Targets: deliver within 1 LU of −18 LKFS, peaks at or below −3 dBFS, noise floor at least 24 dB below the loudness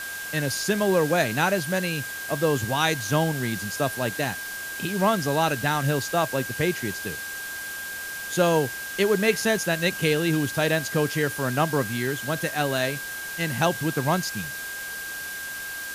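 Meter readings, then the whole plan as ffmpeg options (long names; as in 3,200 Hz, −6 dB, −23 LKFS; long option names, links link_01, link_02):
interfering tone 1,600 Hz; level of the tone −33 dBFS; background noise floor −34 dBFS; target noise floor −49 dBFS; integrated loudness −25.0 LKFS; sample peak −7.0 dBFS; target loudness −18.0 LKFS
→ -af "bandreject=frequency=1600:width=30"
-af "afftdn=noise_reduction=15:noise_floor=-34"
-af "volume=7dB,alimiter=limit=-3dB:level=0:latency=1"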